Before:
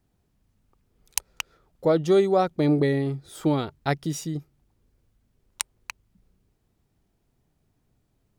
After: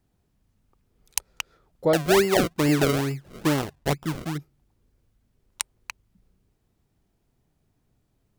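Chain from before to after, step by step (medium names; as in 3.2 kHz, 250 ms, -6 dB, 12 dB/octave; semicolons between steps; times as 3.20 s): 1.93–4.38 s: decimation with a swept rate 35×, swing 100% 2.3 Hz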